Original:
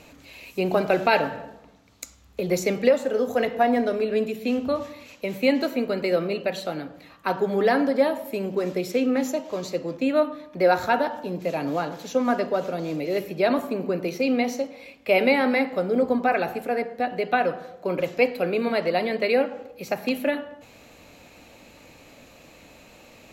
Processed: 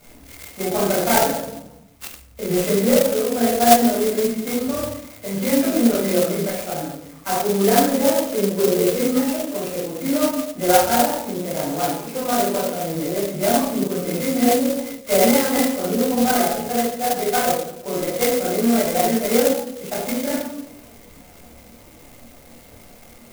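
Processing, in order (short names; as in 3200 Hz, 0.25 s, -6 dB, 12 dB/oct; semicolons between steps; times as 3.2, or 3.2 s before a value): nonlinear frequency compression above 2000 Hz 4:1; 8.17–8.94 bell 470 Hz +11 dB 0.37 oct; shoebox room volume 980 m³, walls furnished, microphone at 7.4 m; chorus voices 6, 1.4 Hz, delay 28 ms, depth 3 ms; clock jitter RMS 0.1 ms; gain -3.5 dB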